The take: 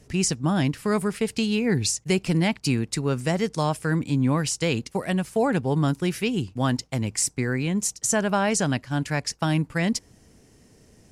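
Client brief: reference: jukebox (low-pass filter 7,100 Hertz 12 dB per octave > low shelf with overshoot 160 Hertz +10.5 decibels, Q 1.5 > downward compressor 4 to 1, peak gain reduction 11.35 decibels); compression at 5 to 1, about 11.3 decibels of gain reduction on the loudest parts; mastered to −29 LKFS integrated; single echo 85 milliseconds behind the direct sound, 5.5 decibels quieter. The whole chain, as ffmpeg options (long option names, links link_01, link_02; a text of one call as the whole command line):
ffmpeg -i in.wav -af "acompressor=threshold=-31dB:ratio=5,lowpass=7100,lowshelf=frequency=160:width_type=q:width=1.5:gain=10.5,aecho=1:1:85:0.531,acompressor=threshold=-33dB:ratio=4,volume=7.5dB" out.wav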